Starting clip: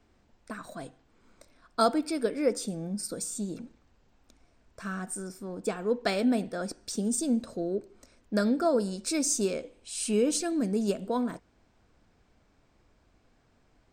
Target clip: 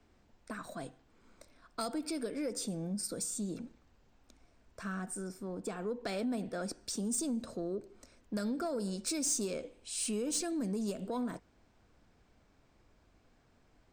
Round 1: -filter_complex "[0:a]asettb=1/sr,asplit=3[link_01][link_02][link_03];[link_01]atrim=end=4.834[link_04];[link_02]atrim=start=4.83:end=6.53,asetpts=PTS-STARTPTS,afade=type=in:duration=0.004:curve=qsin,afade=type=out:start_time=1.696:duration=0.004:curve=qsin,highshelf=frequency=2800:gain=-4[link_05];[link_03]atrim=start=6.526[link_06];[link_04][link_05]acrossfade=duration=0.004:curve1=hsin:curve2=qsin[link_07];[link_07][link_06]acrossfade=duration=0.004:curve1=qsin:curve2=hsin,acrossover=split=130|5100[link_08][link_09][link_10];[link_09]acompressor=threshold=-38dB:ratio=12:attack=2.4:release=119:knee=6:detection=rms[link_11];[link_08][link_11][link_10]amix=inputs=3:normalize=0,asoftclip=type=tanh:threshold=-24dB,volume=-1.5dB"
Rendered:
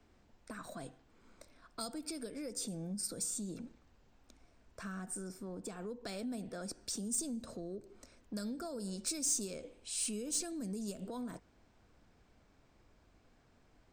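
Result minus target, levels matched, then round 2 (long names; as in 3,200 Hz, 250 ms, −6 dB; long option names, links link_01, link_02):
downward compressor: peak gain reduction +8.5 dB
-filter_complex "[0:a]asettb=1/sr,asplit=3[link_01][link_02][link_03];[link_01]atrim=end=4.834[link_04];[link_02]atrim=start=4.83:end=6.53,asetpts=PTS-STARTPTS,afade=type=in:duration=0.004:curve=qsin,afade=type=out:start_time=1.696:duration=0.004:curve=qsin,highshelf=frequency=2800:gain=-4[link_05];[link_03]atrim=start=6.526[link_06];[link_04][link_05]acrossfade=duration=0.004:curve1=hsin:curve2=qsin[link_07];[link_07][link_06]acrossfade=duration=0.004:curve1=qsin:curve2=hsin,acrossover=split=130|5100[link_08][link_09][link_10];[link_09]acompressor=threshold=-29dB:ratio=12:attack=2.4:release=119:knee=6:detection=rms[link_11];[link_08][link_11][link_10]amix=inputs=3:normalize=0,asoftclip=type=tanh:threshold=-24dB,volume=-1.5dB"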